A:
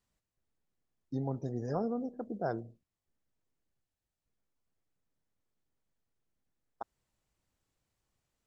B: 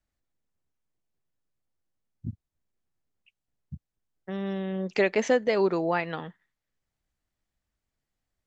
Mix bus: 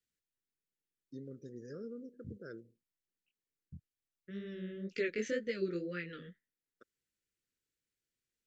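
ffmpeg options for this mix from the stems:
-filter_complex "[0:a]highpass=f=370:p=1,volume=0.501[s0];[1:a]agate=range=0.282:threshold=0.00316:ratio=16:detection=peak,flanger=delay=17:depth=6.5:speed=2,volume=0.422[s1];[s0][s1]amix=inputs=2:normalize=0,asuperstop=centerf=840:order=8:qfactor=0.96"

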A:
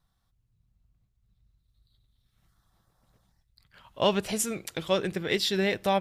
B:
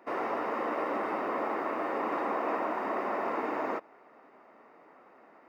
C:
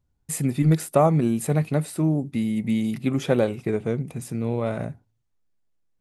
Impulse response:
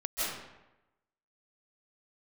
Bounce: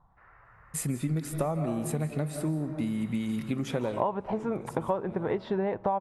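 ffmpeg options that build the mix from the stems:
-filter_complex "[0:a]acontrast=67,lowpass=f=940:t=q:w=4.2,volume=1.26,asplit=2[s0][s1];[1:a]bandpass=f=1600:t=q:w=3.6:csg=0,adelay=100,volume=0.178[s2];[2:a]adelay=450,volume=0.562,asplit=2[s3][s4];[s4]volume=0.188[s5];[s1]apad=whole_len=284683[s6];[s3][s6]sidechaincompress=threshold=0.0398:ratio=8:attack=16:release=682[s7];[3:a]atrim=start_sample=2205[s8];[s5][s8]afir=irnorm=-1:irlink=0[s9];[s0][s2][s7][s9]amix=inputs=4:normalize=0,acompressor=threshold=0.0501:ratio=8"

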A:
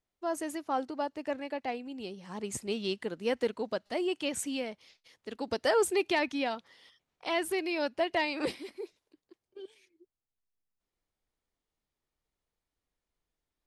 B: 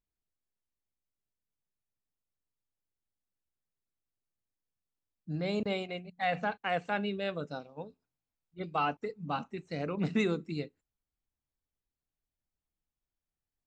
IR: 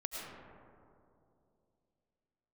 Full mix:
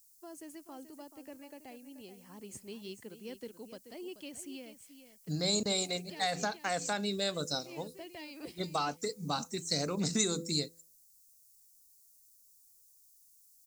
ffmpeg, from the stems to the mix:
-filter_complex "[0:a]acrossover=split=380|3000[s0][s1][s2];[s1]acompressor=threshold=0.00501:ratio=3[s3];[s0][s3][s2]amix=inputs=3:normalize=0,bandreject=f=3700:w=9.5,volume=0.335,asplit=2[s4][s5];[s5]volume=0.266[s6];[1:a]bandreject=f=167:t=h:w=4,bandreject=f=334:t=h:w=4,bandreject=f=501:t=h:w=4,acompressor=threshold=0.0251:ratio=4,aexciter=amount=13.5:drive=9.5:freq=4600,volume=1.26,asplit=2[s7][s8];[s8]apad=whole_len=602817[s9];[s4][s9]sidechaincompress=threshold=0.00398:ratio=8:attack=16:release=146[s10];[s6]aecho=0:1:432:1[s11];[s10][s7][s11]amix=inputs=3:normalize=0"

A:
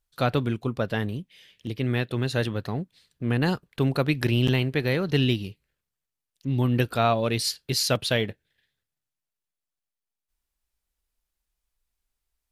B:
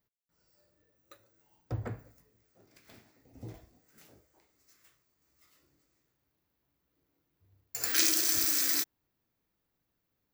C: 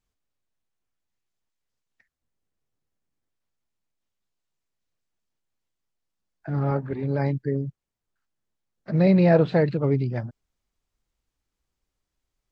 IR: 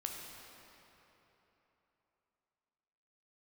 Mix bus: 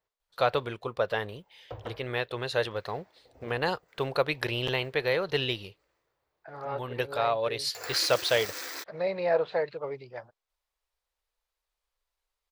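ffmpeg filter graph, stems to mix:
-filter_complex "[0:a]adelay=200,volume=0.422[s0];[1:a]highshelf=f=3100:g=-11,alimiter=level_in=1.41:limit=0.0631:level=0:latency=1:release=103,volume=0.708,dynaudnorm=f=880:g=5:m=1.58,volume=0.531[s1];[2:a]lowshelf=f=320:g=-11,volume=0.266,asplit=2[s2][s3];[s3]apad=whole_len=560776[s4];[s0][s4]sidechaincompress=threshold=0.01:ratio=4:attack=9.9:release=728[s5];[s5][s1][s2]amix=inputs=3:normalize=0,equalizer=f=125:t=o:w=1:g=-4,equalizer=f=250:t=o:w=1:g=-11,equalizer=f=500:t=o:w=1:g=10,equalizer=f=1000:t=o:w=1:g=8,equalizer=f=2000:t=o:w=1:g=4,equalizer=f=4000:t=o:w=1:g=6"

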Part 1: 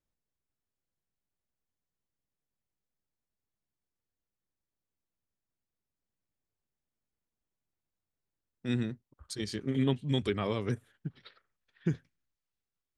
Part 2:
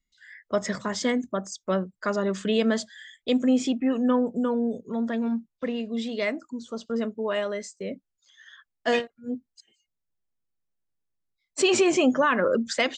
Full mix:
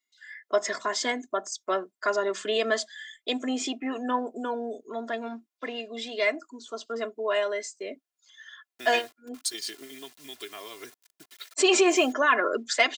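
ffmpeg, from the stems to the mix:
-filter_complex "[0:a]acompressor=threshold=0.0141:ratio=16,acrusher=bits=9:mix=0:aa=0.000001,highshelf=f=2400:g=12,adelay=150,volume=1.19[s0];[1:a]volume=1.12[s1];[s0][s1]amix=inputs=2:normalize=0,highpass=470,aecho=1:1:2.9:0.66"

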